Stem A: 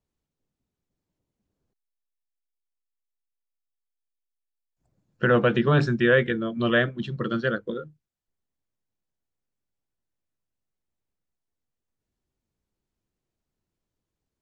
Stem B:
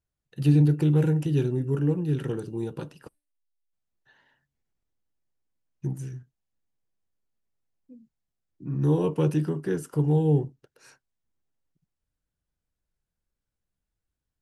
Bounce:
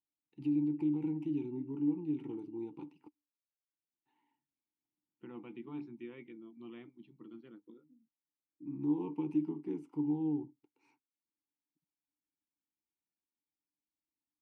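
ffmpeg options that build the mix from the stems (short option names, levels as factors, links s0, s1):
-filter_complex "[0:a]volume=0.237,asplit=2[s0][s1];[1:a]alimiter=limit=0.133:level=0:latency=1:release=66,volume=1[s2];[s1]apad=whole_len=635737[s3];[s2][s3]sidechaincompress=threshold=0.00282:ratio=8:attack=16:release=442[s4];[s0][s4]amix=inputs=2:normalize=0,asplit=3[s5][s6][s7];[s5]bandpass=f=300:t=q:w=8,volume=1[s8];[s6]bandpass=f=870:t=q:w=8,volume=0.501[s9];[s7]bandpass=f=2240:t=q:w=8,volume=0.355[s10];[s8][s9][s10]amix=inputs=3:normalize=0"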